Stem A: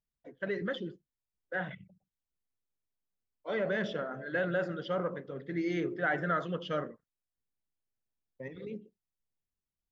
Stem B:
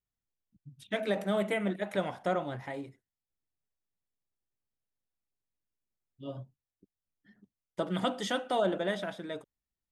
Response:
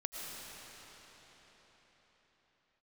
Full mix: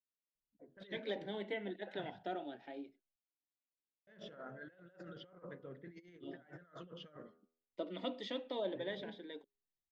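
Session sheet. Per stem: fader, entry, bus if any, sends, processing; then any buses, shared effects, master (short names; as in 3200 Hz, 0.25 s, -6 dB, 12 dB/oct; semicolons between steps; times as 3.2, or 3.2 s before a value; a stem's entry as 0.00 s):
-13.5 dB, 0.35 s, muted 3.16–4.07, no send, de-hum 81.73 Hz, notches 18; low-pass opened by the level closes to 680 Hz, open at -31 dBFS; negative-ratio compressor -39 dBFS, ratio -0.5
-5.5 dB, 0.00 s, no send, Chebyshev band-pass 260–4100 Hz, order 3; bell 1200 Hz -10 dB 0.63 oct; cascading phaser falling 0.25 Hz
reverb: off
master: dry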